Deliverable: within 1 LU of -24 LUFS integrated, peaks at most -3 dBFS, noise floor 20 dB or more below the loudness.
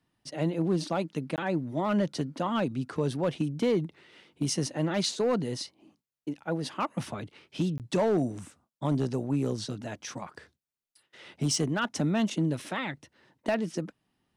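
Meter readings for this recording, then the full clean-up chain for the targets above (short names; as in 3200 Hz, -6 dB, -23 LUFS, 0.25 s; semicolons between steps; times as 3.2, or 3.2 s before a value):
clipped 0.8%; flat tops at -19.5 dBFS; dropouts 2; longest dropout 18 ms; loudness -30.5 LUFS; peak -19.5 dBFS; loudness target -24.0 LUFS
-> clip repair -19.5 dBFS; interpolate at 1.36/7.78, 18 ms; gain +6.5 dB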